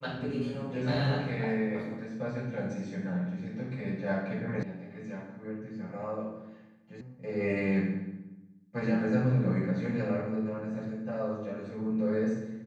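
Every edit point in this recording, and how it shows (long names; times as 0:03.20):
0:04.63: cut off before it has died away
0:07.01: cut off before it has died away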